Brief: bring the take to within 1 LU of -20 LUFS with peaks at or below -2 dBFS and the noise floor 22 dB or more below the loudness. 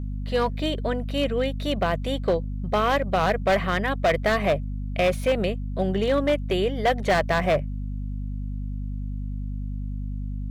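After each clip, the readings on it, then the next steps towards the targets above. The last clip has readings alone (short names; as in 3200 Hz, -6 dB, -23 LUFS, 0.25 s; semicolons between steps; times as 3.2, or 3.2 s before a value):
clipped 1.8%; flat tops at -15.5 dBFS; hum 50 Hz; harmonics up to 250 Hz; hum level -28 dBFS; loudness -25.5 LUFS; peak -15.5 dBFS; loudness target -20.0 LUFS
-> clip repair -15.5 dBFS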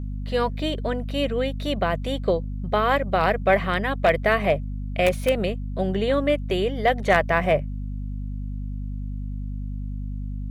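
clipped 0.0%; hum 50 Hz; harmonics up to 250 Hz; hum level -27 dBFS
-> notches 50/100/150/200/250 Hz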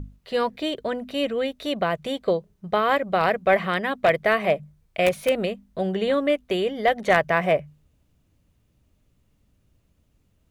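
hum none; loudness -23.5 LUFS; peak -6.5 dBFS; loudness target -20.0 LUFS
-> gain +3.5 dB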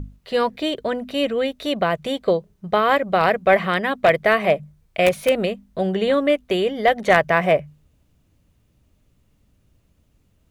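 loudness -20.0 LUFS; peak -3.0 dBFS; noise floor -63 dBFS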